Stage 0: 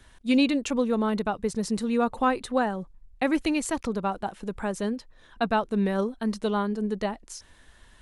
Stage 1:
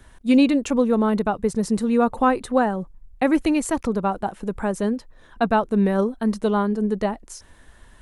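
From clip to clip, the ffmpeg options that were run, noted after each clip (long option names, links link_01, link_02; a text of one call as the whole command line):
ffmpeg -i in.wav -af "equalizer=frequency=3900:width=0.59:gain=-7,volume=6dB" out.wav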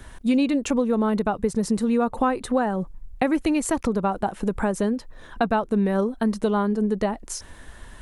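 ffmpeg -i in.wav -af "acompressor=threshold=-28dB:ratio=3,volume=6.5dB" out.wav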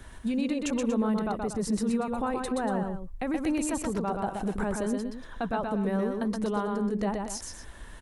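ffmpeg -i in.wav -filter_complex "[0:a]alimiter=limit=-18.5dB:level=0:latency=1:release=28,asplit=2[link_01][link_02];[link_02]aecho=0:1:125.4|236.2:0.631|0.251[link_03];[link_01][link_03]amix=inputs=2:normalize=0,volume=-4dB" out.wav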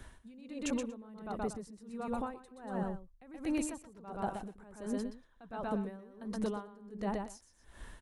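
ffmpeg -i in.wav -af "aeval=exprs='val(0)*pow(10,-22*(0.5-0.5*cos(2*PI*1.4*n/s))/20)':channel_layout=same,volume=-4dB" out.wav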